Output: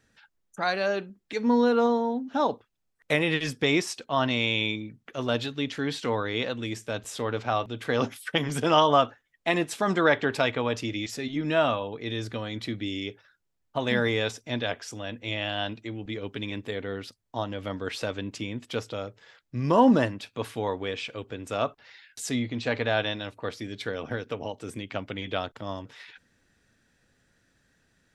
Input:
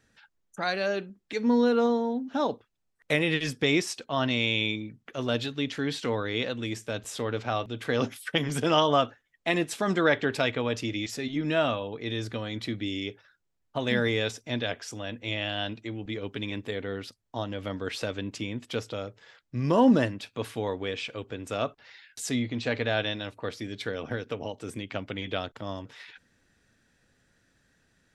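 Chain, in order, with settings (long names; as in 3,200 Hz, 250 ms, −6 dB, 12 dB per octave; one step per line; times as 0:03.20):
dynamic equaliser 950 Hz, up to +5 dB, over −39 dBFS, Q 1.3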